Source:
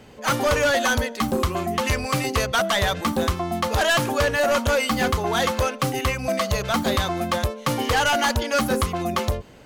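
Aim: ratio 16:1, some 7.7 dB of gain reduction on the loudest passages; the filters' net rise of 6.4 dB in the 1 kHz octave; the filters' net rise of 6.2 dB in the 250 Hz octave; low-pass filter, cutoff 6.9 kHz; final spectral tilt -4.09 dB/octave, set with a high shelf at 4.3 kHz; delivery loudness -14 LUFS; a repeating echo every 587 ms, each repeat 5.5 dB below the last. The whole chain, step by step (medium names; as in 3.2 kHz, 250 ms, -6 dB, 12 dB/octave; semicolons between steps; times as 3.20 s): low-pass 6.9 kHz; peaking EQ 250 Hz +7 dB; peaking EQ 1 kHz +7.5 dB; treble shelf 4.3 kHz +8.5 dB; compression 16:1, threshold -20 dBFS; feedback delay 587 ms, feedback 53%, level -5.5 dB; trim +9 dB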